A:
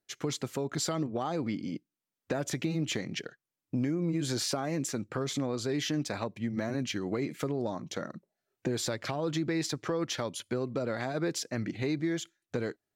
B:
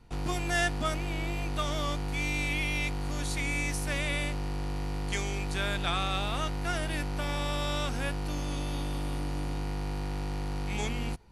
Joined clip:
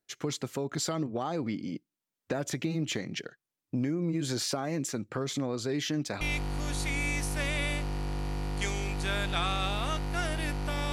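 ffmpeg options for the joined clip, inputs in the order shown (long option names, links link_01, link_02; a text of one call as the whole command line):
ffmpeg -i cue0.wav -i cue1.wav -filter_complex "[0:a]apad=whole_dur=10.92,atrim=end=10.92,atrim=end=6.212[link_01];[1:a]atrim=start=2.718:end=7.43[link_02];[link_01][link_02]acrossfade=duration=0.004:curve1=hsin:curve2=hsin" out.wav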